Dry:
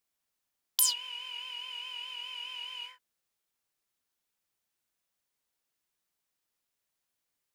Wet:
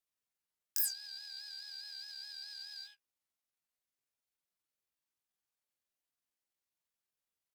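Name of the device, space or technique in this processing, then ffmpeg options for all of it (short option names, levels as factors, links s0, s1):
chipmunk voice: -af "asetrate=72056,aresample=44100,atempo=0.612027,volume=0.501"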